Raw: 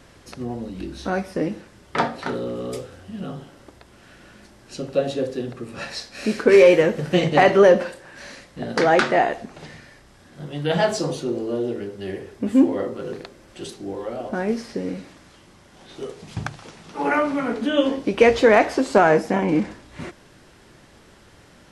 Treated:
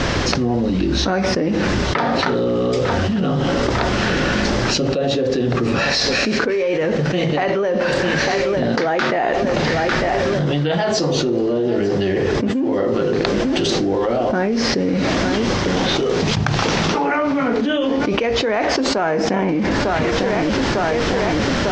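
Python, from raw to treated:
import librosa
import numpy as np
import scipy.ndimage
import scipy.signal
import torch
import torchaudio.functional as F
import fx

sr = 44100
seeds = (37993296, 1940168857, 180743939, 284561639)

y = scipy.signal.sosfilt(scipy.signal.butter(6, 6400.0, 'lowpass', fs=sr, output='sos'), x)
y = fx.echo_feedback(y, sr, ms=900, feedback_pct=53, wet_db=-23.0)
y = fx.env_flatten(y, sr, amount_pct=100)
y = y * 10.0 ** (-9.0 / 20.0)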